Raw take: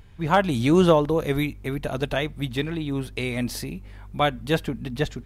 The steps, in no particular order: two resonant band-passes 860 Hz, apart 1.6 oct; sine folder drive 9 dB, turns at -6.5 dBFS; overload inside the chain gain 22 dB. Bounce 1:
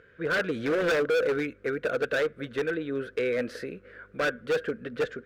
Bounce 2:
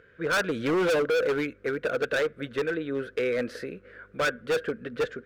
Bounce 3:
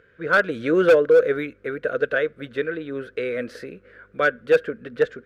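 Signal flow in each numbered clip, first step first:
sine folder > two resonant band-passes > overload inside the chain; two resonant band-passes > sine folder > overload inside the chain; two resonant band-passes > overload inside the chain > sine folder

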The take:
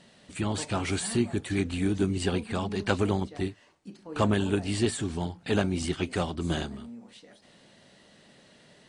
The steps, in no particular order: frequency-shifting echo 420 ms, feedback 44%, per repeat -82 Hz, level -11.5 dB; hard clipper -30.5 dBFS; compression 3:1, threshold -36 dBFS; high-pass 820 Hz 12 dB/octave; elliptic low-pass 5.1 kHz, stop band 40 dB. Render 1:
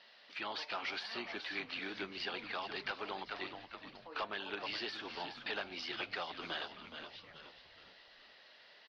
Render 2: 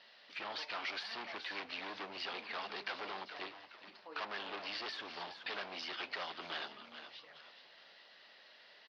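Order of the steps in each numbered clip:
high-pass > frequency-shifting echo > compression > hard clipper > elliptic low-pass; hard clipper > frequency-shifting echo > high-pass > compression > elliptic low-pass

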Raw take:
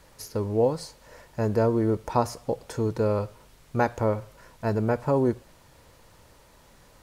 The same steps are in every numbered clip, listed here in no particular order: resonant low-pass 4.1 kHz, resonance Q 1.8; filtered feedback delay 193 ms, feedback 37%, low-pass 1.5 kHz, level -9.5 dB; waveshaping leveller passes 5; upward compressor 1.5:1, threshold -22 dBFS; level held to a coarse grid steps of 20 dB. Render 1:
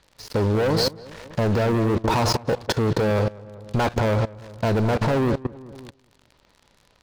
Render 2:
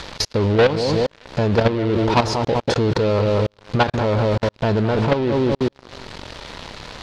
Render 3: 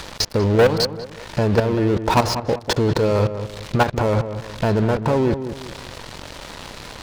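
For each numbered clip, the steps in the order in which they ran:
resonant low-pass > waveshaping leveller > upward compressor > filtered feedback delay > level held to a coarse grid; filtered feedback delay > level held to a coarse grid > upward compressor > waveshaping leveller > resonant low-pass; level held to a coarse grid > resonant low-pass > upward compressor > waveshaping leveller > filtered feedback delay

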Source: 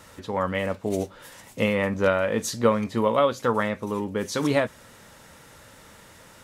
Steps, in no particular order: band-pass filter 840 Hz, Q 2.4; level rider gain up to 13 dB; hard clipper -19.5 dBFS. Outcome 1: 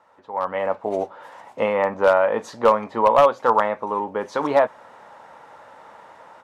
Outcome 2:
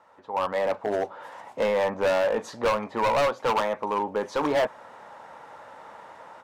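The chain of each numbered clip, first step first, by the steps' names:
band-pass filter > hard clipper > level rider; band-pass filter > level rider > hard clipper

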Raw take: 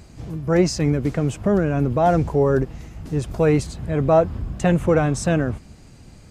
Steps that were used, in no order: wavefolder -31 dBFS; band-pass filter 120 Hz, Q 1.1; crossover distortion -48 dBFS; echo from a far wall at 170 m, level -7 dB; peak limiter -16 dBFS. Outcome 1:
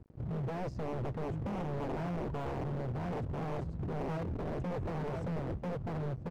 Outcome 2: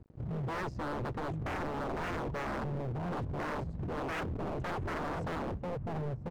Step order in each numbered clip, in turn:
echo from a far wall > peak limiter > band-pass filter > crossover distortion > wavefolder; band-pass filter > crossover distortion > echo from a far wall > peak limiter > wavefolder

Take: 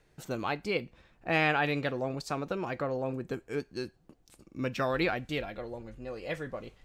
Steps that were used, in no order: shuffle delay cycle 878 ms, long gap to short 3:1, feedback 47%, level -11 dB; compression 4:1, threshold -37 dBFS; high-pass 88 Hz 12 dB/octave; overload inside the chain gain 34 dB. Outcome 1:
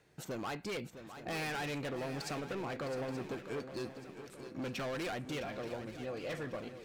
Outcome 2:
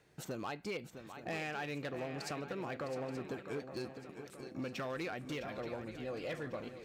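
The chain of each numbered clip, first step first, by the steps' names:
high-pass > overload inside the chain > compression > shuffle delay; compression > shuffle delay > overload inside the chain > high-pass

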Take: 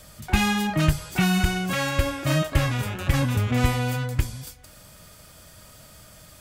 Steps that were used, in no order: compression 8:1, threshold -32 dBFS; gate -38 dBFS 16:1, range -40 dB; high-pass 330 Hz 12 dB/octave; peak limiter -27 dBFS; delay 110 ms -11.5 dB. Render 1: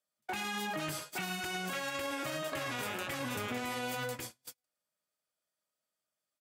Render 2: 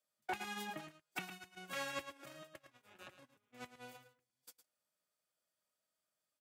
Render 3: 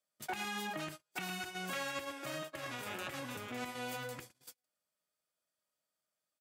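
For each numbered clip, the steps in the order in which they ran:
high-pass > peak limiter > delay > gate > compression; compression > peak limiter > high-pass > gate > delay; compression > delay > peak limiter > gate > high-pass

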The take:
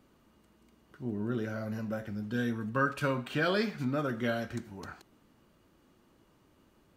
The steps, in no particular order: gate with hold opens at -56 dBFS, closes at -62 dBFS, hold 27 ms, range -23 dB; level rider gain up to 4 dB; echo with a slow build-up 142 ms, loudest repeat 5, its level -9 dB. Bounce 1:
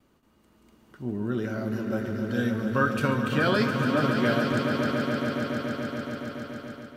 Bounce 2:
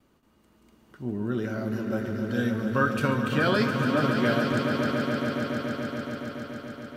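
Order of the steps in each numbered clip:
gate with hold > echo with a slow build-up > level rider; gate with hold > level rider > echo with a slow build-up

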